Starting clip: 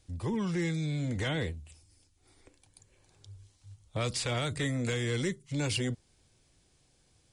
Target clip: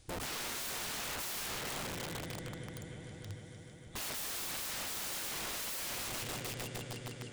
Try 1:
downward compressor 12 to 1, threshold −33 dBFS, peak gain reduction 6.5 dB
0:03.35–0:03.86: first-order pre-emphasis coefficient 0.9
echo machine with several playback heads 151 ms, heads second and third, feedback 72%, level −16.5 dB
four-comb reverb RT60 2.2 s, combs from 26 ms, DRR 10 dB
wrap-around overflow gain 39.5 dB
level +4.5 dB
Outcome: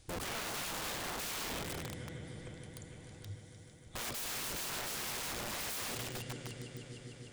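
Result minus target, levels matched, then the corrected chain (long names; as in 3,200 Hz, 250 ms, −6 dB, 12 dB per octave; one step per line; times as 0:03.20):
downward compressor: peak gain reduction +6.5 dB
0:03.35–0:03.86: first-order pre-emphasis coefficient 0.9
echo machine with several playback heads 151 ms, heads second and third, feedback 72%, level −16.5 dB
four-comb reverb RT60 2.2 s, combs from 26 ms, DRR 10 dB
wrap-around overflow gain 39.5 dB
level +4.5 dB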